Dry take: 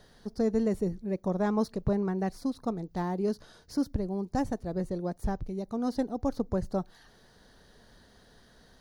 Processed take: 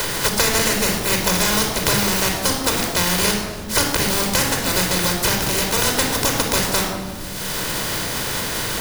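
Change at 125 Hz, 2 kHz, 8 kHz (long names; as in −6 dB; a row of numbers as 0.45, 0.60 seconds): +10.0, +27.0, +35.5 decibels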